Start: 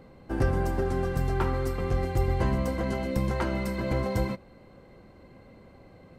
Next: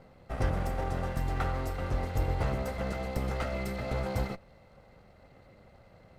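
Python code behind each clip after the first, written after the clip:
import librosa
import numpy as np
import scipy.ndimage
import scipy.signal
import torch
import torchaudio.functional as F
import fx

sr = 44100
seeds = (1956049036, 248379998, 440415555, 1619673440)

y = fx.lower_of_two(x, sr, delay_ms=1.5)
y = y * librosa.db_to_amplitude(-3.0)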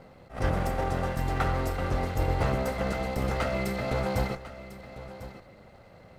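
y = fx.low_shelf(x, sr, hz=88.0, db=-6.0)
y = y + 10.0 ** (-14.5 / 20.0) * np.pad(y, (int(1048 * sr / 1000.0), 0))[:len(y)]
y = fx.attack_slew(y, sr, db_per_s=180.0)
y = y * librosa.db_to_amplitude(5.5)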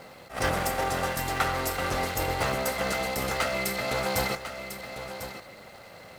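y = fx.tilt_eq(x, sr, slope=3.0)
y = fx.rider(y, sr, range_db=4, speed_s=0.5)
y = y * librosa.db_to_amplitude(3.5)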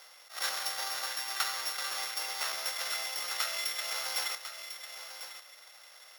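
y = np.r_[np.sort(x[:len(x) // 8 * 8].reshape(-1, 8), axis=1).ravel(), x[len(x) // 8 * 8:]]
y = scipy.signal.sosfilt(scipy.signal.butter(2, 1400.0, 'highpass', fs=sr, output='sos'), y)
y = y * librosa.db_to_amplitude(-2.5)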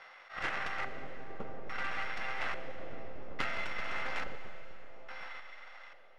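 y = fx.self_delay(x, sr, depth_ms=0.39)
y = fx.filter_lfo_lowpass(y, sr, shape='square', hz=0.59, low_hz=480.0, high_hz=2000.0, q=1.4)
y = fx.rev_schroeder(y, sr, rt60_s=3.3, comb_ms=31, drr_db=9.5)
y = y * librosa.db_to_amplitude(4.0)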